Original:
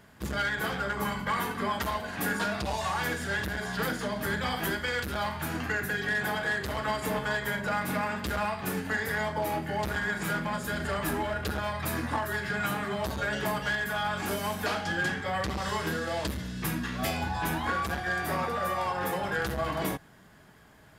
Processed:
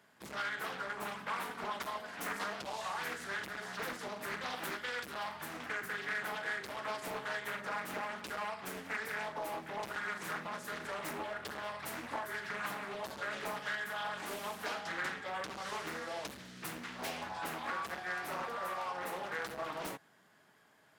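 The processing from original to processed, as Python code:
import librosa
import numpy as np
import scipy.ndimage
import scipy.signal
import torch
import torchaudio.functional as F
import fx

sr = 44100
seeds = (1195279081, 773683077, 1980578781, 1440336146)

y = scipy.signal.sosfilt(scipy.signal.butter(2, 120.0, 'highpass', fs=sr, output='sos'), x)
y = fx.low_shelf(y, sr, hz=240.0, db=-12.0)
y = fx.doppler_dist(y, sr, depth_ms=0.64)
y = F.gain(torch.from_numpy(y), -7.5).numpy()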